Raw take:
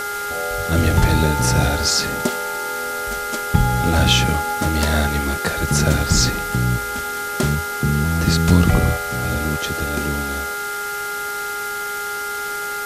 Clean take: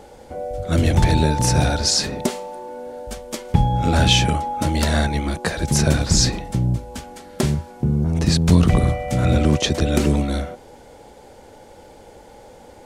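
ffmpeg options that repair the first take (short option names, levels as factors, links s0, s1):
-af "bandreject=f=411.7:t=h:w=4,bandreject=f=823.4:t=h:w=4,bandreject=f=1235.1:t=h:w=4,bandreject=f=1646.8:t=h:w=4,bandreject=f=2058.5:t=h:w=4,bandreject=f=1400:w=30,afwtdn=0.025,asetnsamples=n=441:p=0,asendcmd='8.97 volume volume 7dB',volume=1"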